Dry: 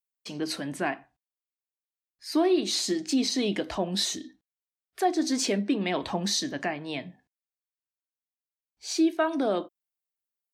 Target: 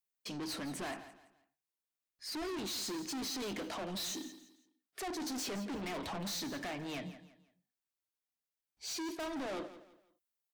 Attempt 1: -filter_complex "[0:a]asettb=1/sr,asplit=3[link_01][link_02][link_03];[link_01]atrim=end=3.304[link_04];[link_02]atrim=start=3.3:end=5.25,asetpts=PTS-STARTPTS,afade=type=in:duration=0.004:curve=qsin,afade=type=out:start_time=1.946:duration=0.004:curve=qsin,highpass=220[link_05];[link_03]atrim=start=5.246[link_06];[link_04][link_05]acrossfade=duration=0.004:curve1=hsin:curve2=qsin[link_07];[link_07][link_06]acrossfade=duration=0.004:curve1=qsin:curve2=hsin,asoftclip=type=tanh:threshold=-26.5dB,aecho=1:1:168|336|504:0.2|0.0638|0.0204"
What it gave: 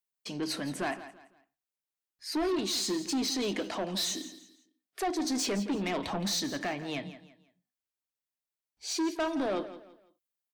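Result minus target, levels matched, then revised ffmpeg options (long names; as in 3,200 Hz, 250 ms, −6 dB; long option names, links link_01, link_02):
soft clipping: distortion −6 dB
-filter_complex "[0:a]asettb=1/sr,asplit=3[link_01][link_02][link_03];[link_01]atrim=end=3.304[link_04];[link_02]atrim=start=3.3:end=5.25,asetpts=PTS-STARTPTS,afade=type=in:duration=0.004:curve=qsin,afade=type=out:start_time=1.946:duration=0.004:curve=qsin,highpass=220[link_05];[link_03]atrim=start=5.246[link_06];[link_04][link_05]acrossfade=duration=0.004:curve1=hsin:curve2=qsin[link_07];[link_07][link_06]acrossfade=duration=0.004:curve1=qsin:curve2=hsin,asoftclip=type=tanh:threshold=-38dB,aecho=1:1:168|336|504:0.2|0.0638|0.0204"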